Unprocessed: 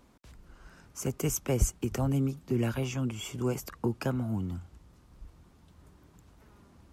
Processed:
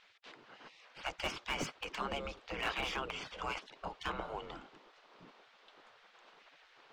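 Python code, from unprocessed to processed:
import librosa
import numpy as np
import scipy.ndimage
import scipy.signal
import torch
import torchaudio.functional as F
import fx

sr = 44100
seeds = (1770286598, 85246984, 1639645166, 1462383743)

y = fx.spec_gate(x, sr, threshold_db=-20, keep='weak')
y = fx.ladder_lowpass(y, sr, hz=4600.0, resonance_pct=25)
y = fx.slew_limit(y, sr, full_power_hz=11.0)
y = y * librosa.db_to_amplitude(14.0)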